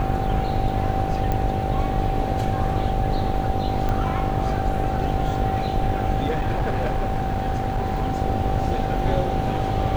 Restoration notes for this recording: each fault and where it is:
buzz 50 Hz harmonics 17 -28 dBFS
whine 770 Hz -27 dBFS
1.32 s: pop -12 dBFS
3.89 s: pop -14 dBFS
6.29–8.14 s: clipped -18.5 dBFS

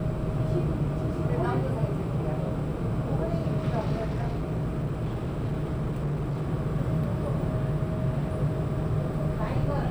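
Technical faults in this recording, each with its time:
3.99–6.48 s: clipped -25 dBFS

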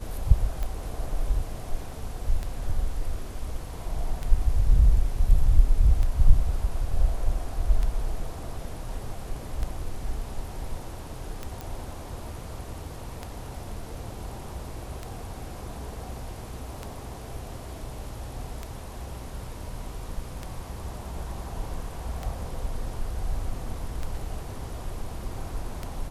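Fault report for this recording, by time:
tick 33 1/3 rpm -18 dBFS
11.61 s: pop

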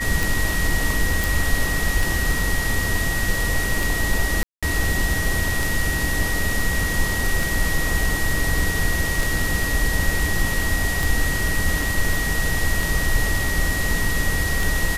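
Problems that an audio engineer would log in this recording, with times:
tick 33 1/3 rpm
whine 1.9 kHz -25 dBFS
1.24 s: pop
4.43–4.63 s: dropout 196 ms
11.82 s: dropout 2.5 ms

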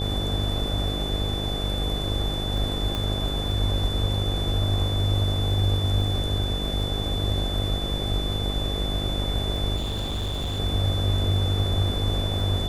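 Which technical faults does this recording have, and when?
buzz 50 Hz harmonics 16 -29 dBFS
crackle 11 per s
whine 3.5 kHz -31 dBFS
2.95 s: pop -15 dBFS
9.76–10.60 s: clipped -24.5 dBFS

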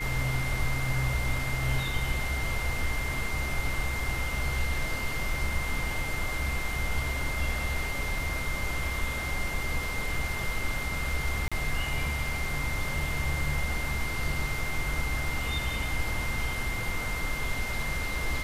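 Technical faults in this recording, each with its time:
whine 2.1 kHz -34 dBFS
11.48–11.52 s: dropout 36 ms

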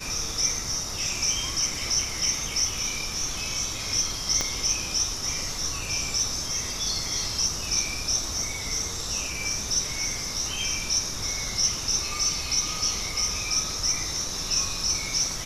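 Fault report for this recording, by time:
4.41 s: pop -10 dBFS

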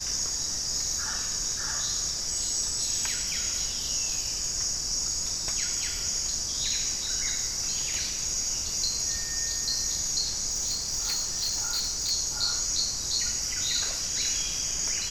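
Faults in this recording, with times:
10.49–12.12 s: clipped -24 dBFS

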